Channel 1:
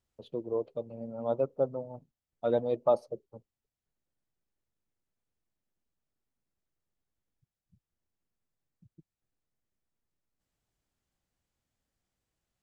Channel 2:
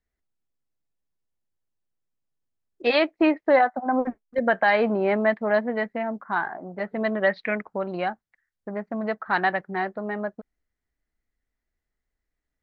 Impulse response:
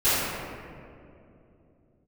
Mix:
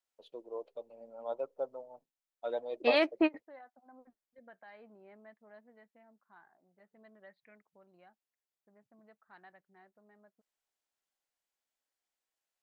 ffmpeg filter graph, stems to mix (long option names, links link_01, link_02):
-filter_complex "[0:a]highpass=610,bandreject=frequency=1200:width=16,volume=-3.5dB,asplit=2[link_01][link_02];[1:a]volume=-6.5dB[link_03];[link_02]apad=whole_len=556759[link_04];[link_03][link_04]sidechaingate=range=-28dB:threshold=-59dB:ratio=16:detection=peak[link_05];[link_01][link_05]amix=inputs=2:normalize=0"